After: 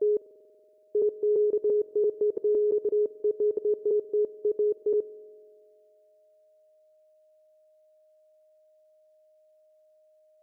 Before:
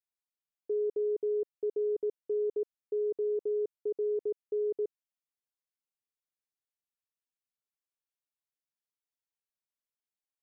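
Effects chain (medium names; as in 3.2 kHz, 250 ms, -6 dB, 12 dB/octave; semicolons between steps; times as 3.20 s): slices played last to first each 170 ms, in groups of 5; spring tank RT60 2.1 s, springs 47 ms, DRR 17.5 dB; whistle 620 Hz -66 dBFS; trim +6.5 dB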